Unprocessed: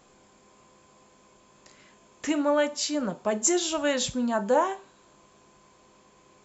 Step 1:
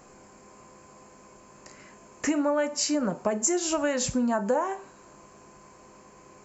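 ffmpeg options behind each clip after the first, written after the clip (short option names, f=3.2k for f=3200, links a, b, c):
-af "equalizer=f=3.5k:t=o:w=0.46:g=-14.5,acompressor=threshold=-29dB:ratio=6,volume=6.5dB"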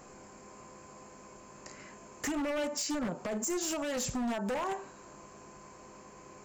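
-af "alimiter=limit=-23dB:level=0:latency=1:release=181,aeval=exprs='0.0398*(abs(mod(val(0)/0.0398+3,4)-2)-1)':c=same"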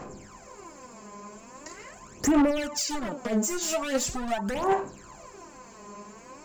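-af "aphaser=in_gain=1:out_gain=1:delay=4.9:decay=0.72:speed=0.42:type=sinusoidal,volume=2.5dB"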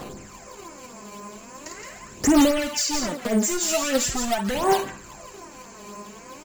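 -filter_complex "[0:a]acrossover=split=1300[a][b];[a]acrusher=samples=9:mix=1:aa=0.000001:lfo=1:lforange=9:lforate=3.8[c];[b]aecho=1:1:52.48|169.1:0.398|0.562[d];[c][d]amix=inputs=2:normalize=0,volume=4.5dB"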